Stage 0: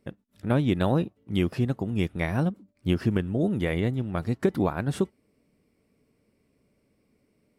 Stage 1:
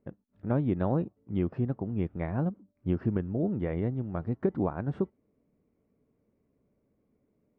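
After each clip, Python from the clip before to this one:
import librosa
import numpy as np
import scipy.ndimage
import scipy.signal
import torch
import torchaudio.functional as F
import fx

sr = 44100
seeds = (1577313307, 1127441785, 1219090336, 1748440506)

y = scipy.signal.sosfilt(scipy.signal.butter(2, 1200.0, 'lowpass', fs=sr, output='sos'), x)
y = y * librosa.db_to_amplitude(-4.0)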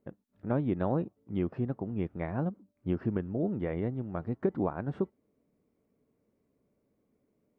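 y = fx.low_shelf(x, sr, hz=150.0, db=-6.5)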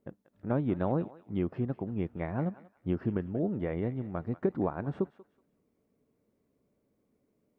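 y = fx.echo_thinned(x, sr, ms=187, feedback_pct=31, hz=1200.0, wet_db=-12.5)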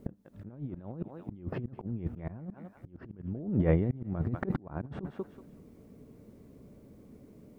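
y = fx.low_shelf(x, sr, hz=300.0, db=11.5)
y = fx.over_compress(y, sr, threshold_db=-30.0, ratio=-0.5)
y = fx.auto_swell(y, sr, attack_ms=517.0)
y = y * librosa.db_to_amplitude(8.0)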